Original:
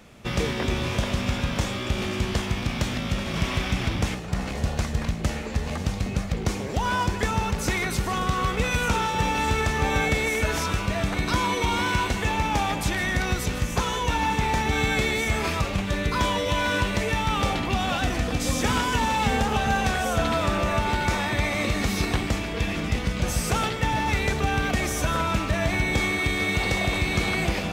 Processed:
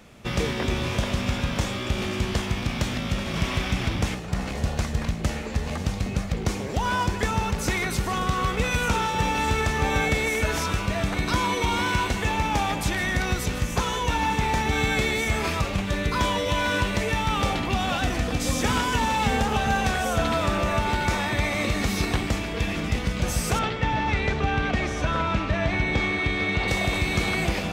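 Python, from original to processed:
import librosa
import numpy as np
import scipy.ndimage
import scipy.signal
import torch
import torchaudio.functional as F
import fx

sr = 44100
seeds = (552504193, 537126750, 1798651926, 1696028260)

y = fx.lowpass(x, sr, hz=4000.0, slope=12, at=(23.59, 26.68))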